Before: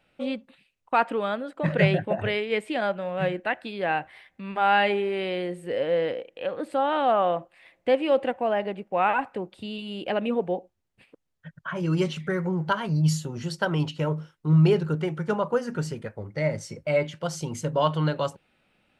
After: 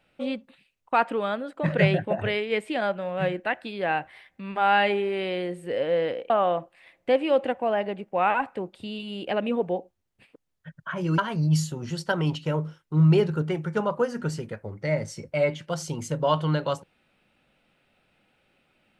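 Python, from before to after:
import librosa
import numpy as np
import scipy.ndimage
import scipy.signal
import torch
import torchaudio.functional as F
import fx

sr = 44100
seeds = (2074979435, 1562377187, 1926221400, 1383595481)

y = fx.edit(x, sr, fx.cut(start_s=6.3, length_s=0.79),
    fx.cut(start_s=11.97, length_s=0.74), tone=tone)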